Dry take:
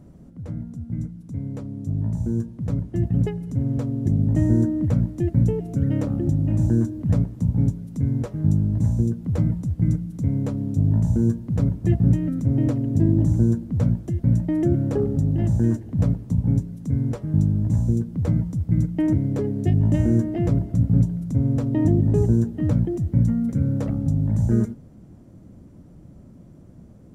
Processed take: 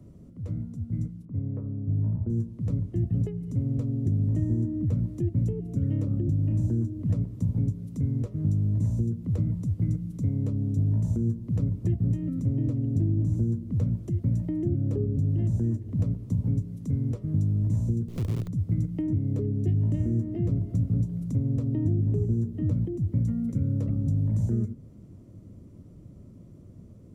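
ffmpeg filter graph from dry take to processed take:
-filter_complex "[0:a]asettb=1/sr,asplit=3[a][b][c];[a]atrim=end=1.254[d];[b]atrim=start=1.25:end=2.3,asetpts=PTS-STARTPTS,afade=t=in:d=0.004:c=qsin,afade=t=out:st=1.046:d=0.004:c=qsin,lowpass=f=1.6k:w=0.5412,lowpass=f=1.6k:w=1.3066,bandreject=f=57.88:t=h:w=4,bandreject=f=115.76:t=h:w=4,bandreject=f=173.64:t=h:w=4,bandreject=f=231.52:t=h:w=4,bandreject=f=289.4:t=h:w=4,bandreject=f=347.28:t=h:w=4,bandreject=f=405.16:t=h:w=4,bandreject=f=463.04:t=h:w=4,bandreject=f=520.92:t=h:w=4,bandreject=f=578.8:t=h:w=4,bandreject=f=636.68:t=h:w=4,bandreject=f=694.56:t=h:w=4,bandreject=f=752.44:t=h:w=4,bandreject=f=810.32:t=h:w=4,bandreject=f=868.2:t=h:w=4,bandreject=f=926.08:t=h:w=4,bandreject=f=983.96:t=h:w=4,bandreject=f=1.04184k:t=h:w=4,bandreject=f=1.09972k:t=h:w=4,bandreject=f=1.1576k:t=h:w=4,bandreject=f=1.21548k:t=h:w=4,bandreject=f=1.27336k:t=h:w=4,bandreject=f=1.33124k:t=h:w=4,bandreject=f=1.38912k:t=h:w=4,bandreject=f=1.447k:t=h:w=4,bandreject=f=1.50488k:t=h:w=4,bandreject=f=1.56276k:t=h:w=4,bandreject=f=1.62064k:t=h:w=4,bandreject=f=1.67852k:t=h:w=4,bandreject=f=1.7364k:t=h:w=4[e];[c]atrim=start=2.296[f];[d][e]acrossfade=d=0.004:c1=hsin:c2=qsin[g];[g][f]acrossfade=d=0.004:c1=qsin:c2=hsin,asettb=1/sr,asplit=3[h][i][j];[h]atrim=end=18.084[k];[i]atrim=start=18.08:end=18.48,asetpts=PTS-STARTPTS,afade=t=in:d=0.004:c=qsin,afade=t=out:st=0.396:d=0.004:c=qsin,equalizer=f=110:t=o:w=1.4:g=8,acompressor=threshold=-28dB:ratio=3:attack=3.2:release=140:knee=1:detection=peak,acrusher=bits=5:dc=4:mix=0:aa=0.000001[l];[j]atrim=start=18.476[m];[k][l]acrossfade=d=0.004:c1=hsin:c2=qsin[n];[n][m]acrossfade=d=0.004:c1=qsin:c2=hsin,equalizer=f=100:t=o:w=0.33:g=8,equalizer=f=400:t=o:w=0.33:g=3,equalizer=f=800:t=o:w=0.33:g=-9,equalizer=f=1.6k:t=o:w=0.33:g=-8,acrossover=split=140|350[o][p][q];[o]acompressor=threshold=-24dB:ratio=4[r];[p]acompressor=threshold=-25dB:ratio=4[s];[q]acompressor=threshold=-42dB:ratio=4[t];[r][s][t]amix=inputs=3:normalize=0,volume=-3.5dB"

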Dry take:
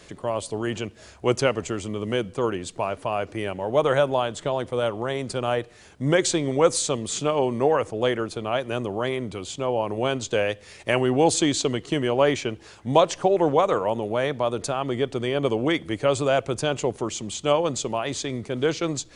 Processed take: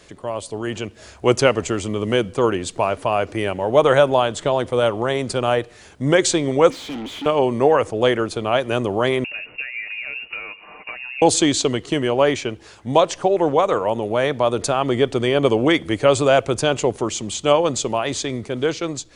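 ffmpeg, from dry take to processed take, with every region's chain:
-filter_complex "[0:a]asettb=1/sr,asplit=3[a][b][c];[a]atrim=end=6.704[d];[b]atrim=start=6.7:end=7.26,asetpts=PTS-STARTPTS,afade=t=in:d=0.004:c=qsin,afade=t=out:st=0.556:d=0.004:c=qsin,asplit=3[e][f][g];[e]bandpass=f=270:t=q:w=8,volume=0dB[h];[f]bandpass=f=2.29k:t=q:w=8,volume=-6dB[i];[g]bandpass=f=3.01k:t=q:w=8,volume=-9dB[j];[h][i][j]amix=inputs=3:normalize=0,asplit=2[k][l];[l]highpass=f=720:p=1,volume=34dB,asoftclip=type=tanh:threshold=-26dB[m];[k][m]amix=inputs=2:normalize=0,lowpass=f=1.8k:p=1,volume=-6dB[n];[c]atrim=start=7.256[o];[d][n]acrossfade=d=0.004:c1=hsin:c2=qsin[p];[p][o]acrossfade=d=0.004:c1=qsin:c2=hsin,asettb=1/sr,asplit=3[q][r][s];[q]atrim=end=9.244[t];[r]atrim=start=9.24:end=11.22,asetpts=PTS-STARTPTS,afade=t=in:d=0.004:c=qsin,afade=t=out:st=1.976:d=0.004:c=qsin,acompressor=threshold=-34dB:ratio=12:attack=3.2:release=140:knee=1:detection=peak,aecho=1:1:7:0.6,atrim=end_sample=87318,lowpass=f=2.5k:t=q:w=0.5098,lowpass=f=2.5k:t=q:w=0.6013,lowpass=f=2.5k:t=q:w=0.9,lowpass=f=2.5k:t=q:w=2.563,afreqshift=-2900[u];[s]atrim=start=11.216[v];[t][u]acrossfade=d=0.004:c1=hsin:c2=qsin[w];[w][v]acrossfade=d=0.004:c1=qsin:c2=hsin,equalizer=f=160:t=o:w=0.77:g=-2.5,dynaudnorm=f=210:g=9:m=9dB"

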